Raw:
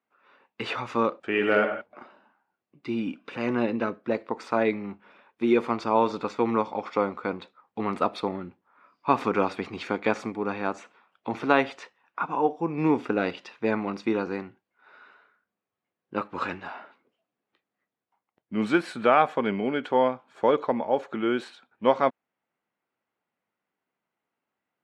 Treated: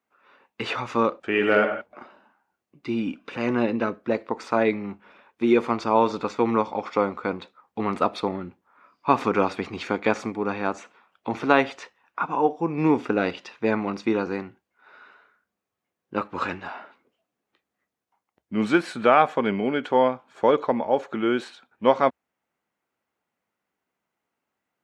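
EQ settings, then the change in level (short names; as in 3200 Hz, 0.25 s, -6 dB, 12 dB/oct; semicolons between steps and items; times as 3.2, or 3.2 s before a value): bell 66 Hz +11.5 dB 0.41 oct; bell 6400 Hz +3 dB 0.5 oct; +2.5 dB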